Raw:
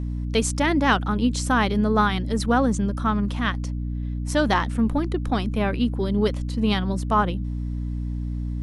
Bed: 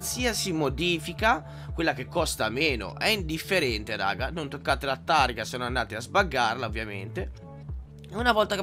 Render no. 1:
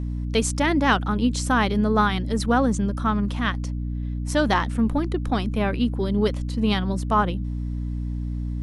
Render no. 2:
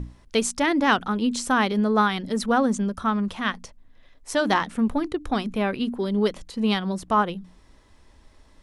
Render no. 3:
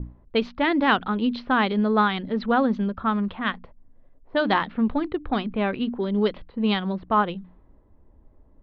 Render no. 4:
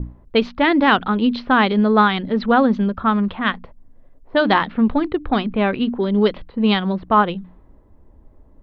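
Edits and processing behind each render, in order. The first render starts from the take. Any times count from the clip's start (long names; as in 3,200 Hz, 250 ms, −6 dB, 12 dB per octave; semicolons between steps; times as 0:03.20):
no processing that can be heard
mains-hum notches 60/120/180/240/300 Hz
Butterworth low-pass 4,300 Hz 48 dB per octave; low-pass that shuts in the quiet parts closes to 560 Hz, open at −17 dBFS
level +6 dB; brickwall limiter −3 dBFS, peak gain reduction 2.5 dB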